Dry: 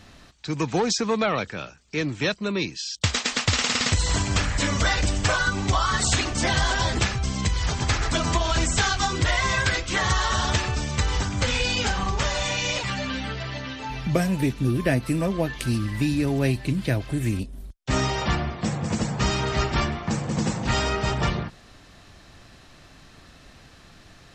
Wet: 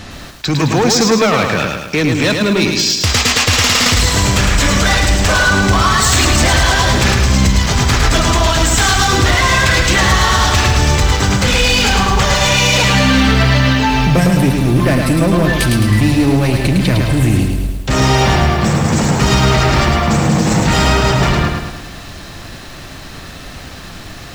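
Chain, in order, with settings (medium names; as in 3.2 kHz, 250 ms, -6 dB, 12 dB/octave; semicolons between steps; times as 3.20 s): in parallel at -0.5 dB: compressor with a negative ratio -30 dBFS, ratio -1; on the sum: hard clipper -18 dBFS, distortion -13 dB; bit-crushed delay 107 ms, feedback 55%, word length 8-bit, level -4 dB; trim +8.5 dB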